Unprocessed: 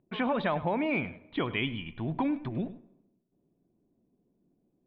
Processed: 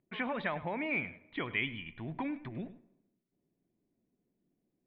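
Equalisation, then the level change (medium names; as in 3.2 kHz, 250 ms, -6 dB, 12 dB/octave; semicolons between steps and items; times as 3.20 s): peaking EQ 2 kHz +10.5 dB 0.73 oct; -8.0 dB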